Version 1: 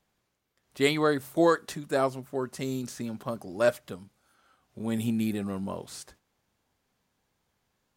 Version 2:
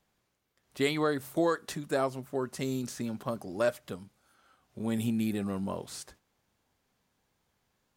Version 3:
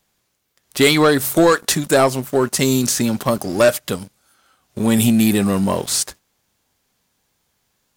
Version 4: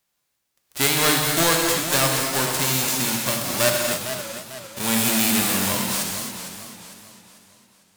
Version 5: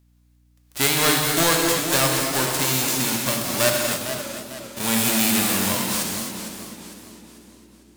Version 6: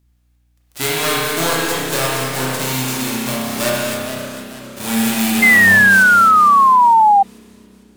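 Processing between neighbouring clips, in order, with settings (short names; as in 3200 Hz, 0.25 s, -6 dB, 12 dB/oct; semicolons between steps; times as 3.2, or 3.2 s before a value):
compressor 2:1, threshold -27 dBFS, peak gain reduction 6 dB
high shelf 3200 Hz +9.5 dB; sample leveller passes 2; gain +8.5 dB
spectral whitening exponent 0.3; non-linear reverb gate 0.31 s flat, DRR 0.5 dB; warbling echo 0.451 s, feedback 42%, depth 140 cents, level -10 dB; gain -8 dB
hum 60 Hz, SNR 35 dB; narrowing echo 0.253 s, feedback 78%, band-pass 310 Hz, level -10.5 dB
spring tank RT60 1 s, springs 31 ms, chirp 25 ms, DRR -1.5 dB; painted sound fall, 5.42–7.23, 780–2100 Hz -8 dBFS; gain -1.5 dB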